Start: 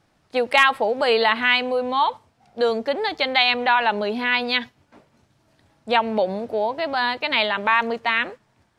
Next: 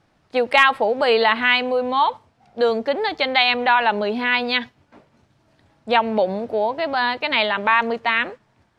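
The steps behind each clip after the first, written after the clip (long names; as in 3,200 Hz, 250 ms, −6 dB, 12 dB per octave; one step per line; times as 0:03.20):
high-shelf EQ 7,200 Hz −10 dB
level +2 dB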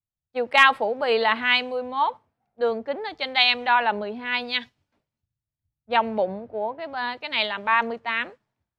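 multiband upward and downward expander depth 100%
level −5.5 dB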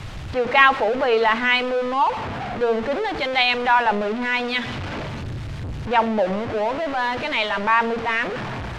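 converter with a step at zero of −22.5 dBFS
low-pass filter 3,000 Hz 12 dB per octave
hum removal 78.8 Hz, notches 9
level +1 dB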